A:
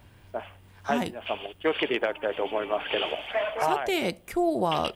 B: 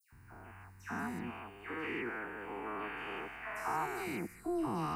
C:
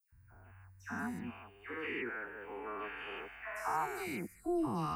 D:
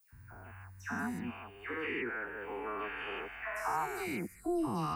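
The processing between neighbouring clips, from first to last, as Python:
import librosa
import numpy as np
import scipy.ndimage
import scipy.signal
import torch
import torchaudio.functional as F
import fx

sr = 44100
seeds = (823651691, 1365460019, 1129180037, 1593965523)

y1 = fx.spec_steps(x, sr, hold_ms=200)
y1 = fx.fixed_phaser(y1, sr, hz=1400.0, stages=4)
y1 = fx.dispersion(y1, sr, late='lows', ms=125.0, hz=2200.0)
y1 = F.gain(torch.from_numpy(y1), -2.0).numpy()
y2 = fx.bin_expand(y1, sr, power=1.5)
y2 = F.gain(torch.from_numpy(y2), 2.5).numpy()
y3 = fx.band_squash(y2, sr, depth_pct=40)
y3 = F.gain(torch.from_numpy(y3), 2.5).numpy()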